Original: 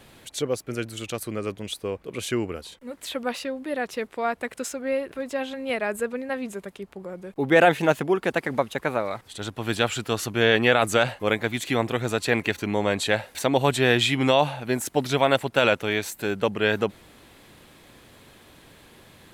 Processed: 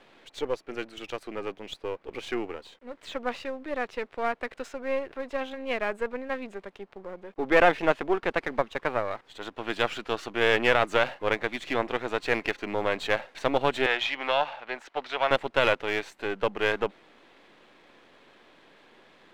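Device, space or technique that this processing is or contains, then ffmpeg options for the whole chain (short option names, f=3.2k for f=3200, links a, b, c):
crystal radio: -filter_complex "[0:a]highpass=300,lowpass=3.2k,aeval=exprs='if(lt(val(0),0),0.447*val(0),val(0))':c=same,asettb=1/sr,asplit=3[a][b][c];[a]atrim=end=13.864[d];[b]atrim=start=13.86:end=15.31,asetpts=PTS-STARTPTS,afade=t=in:d=0.004:c=qsin,afade=t=out:st=1.446:d=0.004:c=qsin,acrossover=split=540 5200:gain=0.158 1 0.224[e][f][g];[e][f][g]amix=inputs=3:normalize=0[h];[c]atrim=start=15.306[i];[d][h]acrossfade=d=0.004:c1=hsin:c2=qsin[j];[j][i]acrossfade=d=0.004:c1=qsin:c2=hsin"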